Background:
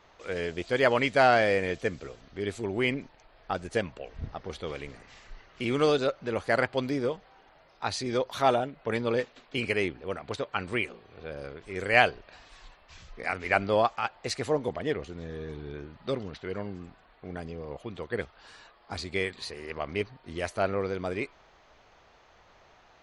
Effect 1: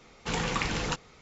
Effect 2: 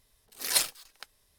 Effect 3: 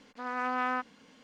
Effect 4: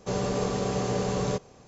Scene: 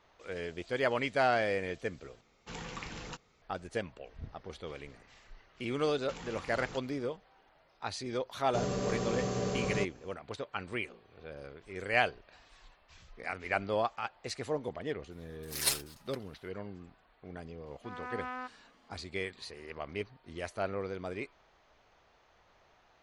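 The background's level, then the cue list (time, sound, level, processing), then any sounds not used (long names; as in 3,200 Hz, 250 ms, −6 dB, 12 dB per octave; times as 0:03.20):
background −7 dB
0:02.21: overwrite with 1 −13 dB
0:05.83: mix in 1 −6.5 dB + downward compressor, threshold −36 dBFS
0:08.47: mix in 4 −5.5 dB + notch filter 870 Hz, Q 5.3
0:15.11: mix in 2 −6 dB + comb filter 7.4 ms, depth 57%
0:17.66: mix in 3 −9.5 dB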